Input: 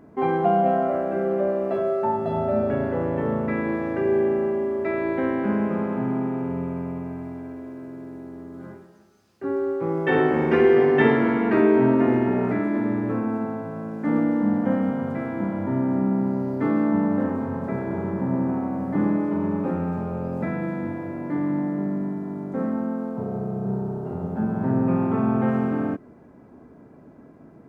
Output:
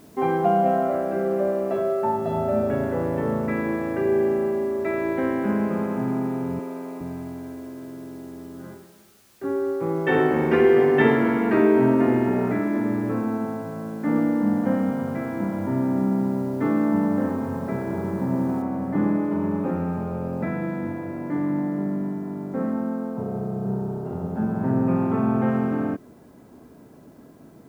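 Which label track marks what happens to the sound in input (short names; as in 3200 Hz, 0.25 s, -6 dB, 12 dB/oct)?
6.590000	7.010000	HPF 260 Hz 24 dB/oct
18.620000	18.620000	noise floor step -58 dB -67 dB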